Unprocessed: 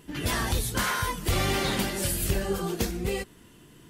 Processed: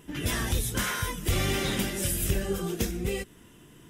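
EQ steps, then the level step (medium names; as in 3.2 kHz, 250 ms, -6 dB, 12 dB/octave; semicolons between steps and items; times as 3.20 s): band-stop 4.4 kHz, Q 5.9; dynamic bell 910 Hz, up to -7 dB, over -45 dBFS, Q 1.1; 0.0 dB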